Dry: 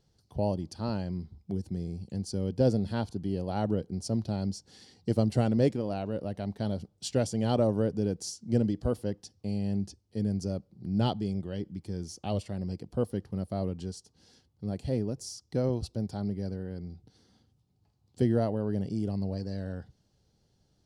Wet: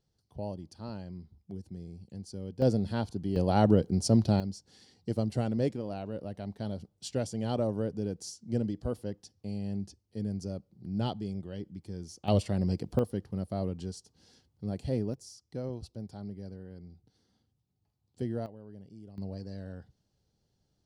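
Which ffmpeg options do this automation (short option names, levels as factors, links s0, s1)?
-af "asetnsamples=n=441:p=0,asendcmd='2.62 volume volume -0.5dB;3.36 volume volume 6.5dB;4.4 volume volume -4.5dB;12.28 volume volume 5.5dB;12.99 volume volume -1dB;15.14 volume volume -8.5dB;18.46 volume volume -18dB;19.18 volume volume -6dB',volume=0.376"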